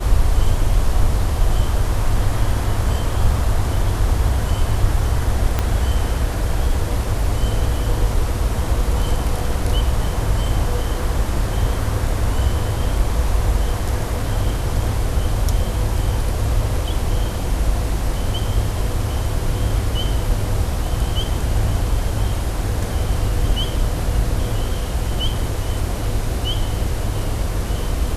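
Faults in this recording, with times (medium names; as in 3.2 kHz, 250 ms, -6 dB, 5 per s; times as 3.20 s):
5.59 s: pop -5 dBFS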